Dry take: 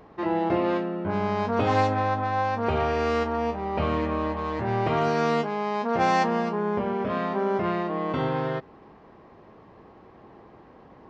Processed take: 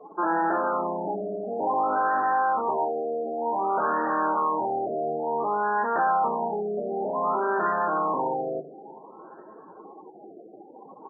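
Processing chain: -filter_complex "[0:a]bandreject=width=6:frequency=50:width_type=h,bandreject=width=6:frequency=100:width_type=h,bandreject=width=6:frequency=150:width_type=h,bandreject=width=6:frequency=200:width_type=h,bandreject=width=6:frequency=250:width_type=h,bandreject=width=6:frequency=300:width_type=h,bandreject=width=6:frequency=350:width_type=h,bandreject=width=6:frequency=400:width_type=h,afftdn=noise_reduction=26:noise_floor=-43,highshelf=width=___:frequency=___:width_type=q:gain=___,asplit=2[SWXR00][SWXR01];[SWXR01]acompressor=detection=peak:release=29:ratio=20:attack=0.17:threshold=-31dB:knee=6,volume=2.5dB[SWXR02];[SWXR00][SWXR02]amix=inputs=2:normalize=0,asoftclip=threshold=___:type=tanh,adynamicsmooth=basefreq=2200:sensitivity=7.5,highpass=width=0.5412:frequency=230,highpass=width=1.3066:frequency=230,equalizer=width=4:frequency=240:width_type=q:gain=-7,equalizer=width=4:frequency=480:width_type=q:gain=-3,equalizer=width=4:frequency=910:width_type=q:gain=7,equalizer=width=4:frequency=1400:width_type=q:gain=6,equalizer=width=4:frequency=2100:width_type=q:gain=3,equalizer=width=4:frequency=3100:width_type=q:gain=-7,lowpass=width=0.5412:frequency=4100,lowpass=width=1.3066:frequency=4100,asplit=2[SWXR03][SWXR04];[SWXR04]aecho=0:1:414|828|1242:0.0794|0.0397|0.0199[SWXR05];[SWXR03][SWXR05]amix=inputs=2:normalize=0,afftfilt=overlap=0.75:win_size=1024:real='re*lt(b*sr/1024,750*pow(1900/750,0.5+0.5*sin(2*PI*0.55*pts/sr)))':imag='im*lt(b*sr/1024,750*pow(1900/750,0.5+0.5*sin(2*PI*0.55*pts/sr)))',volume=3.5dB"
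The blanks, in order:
3, 2000, -6, -26dB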